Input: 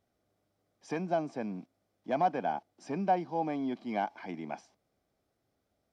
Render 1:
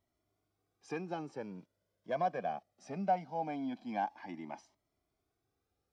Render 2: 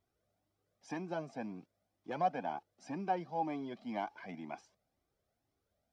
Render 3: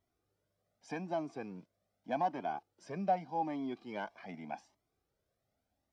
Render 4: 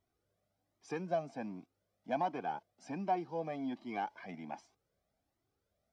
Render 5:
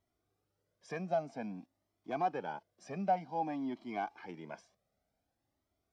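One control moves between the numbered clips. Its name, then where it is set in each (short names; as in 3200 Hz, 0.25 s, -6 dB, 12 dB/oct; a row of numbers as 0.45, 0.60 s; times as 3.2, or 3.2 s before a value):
cascading flanger, rate: 0.21, 2, 0.84, 1.3, 0.53 Hz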